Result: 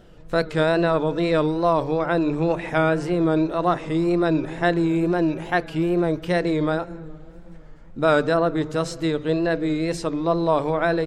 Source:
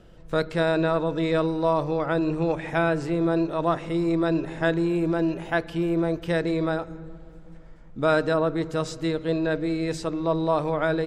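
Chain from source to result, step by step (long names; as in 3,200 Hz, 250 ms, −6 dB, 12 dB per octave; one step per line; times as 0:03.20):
mains-hum notches 50/100/150 Hz
tape wow and flutter 93 cents
level +3 dB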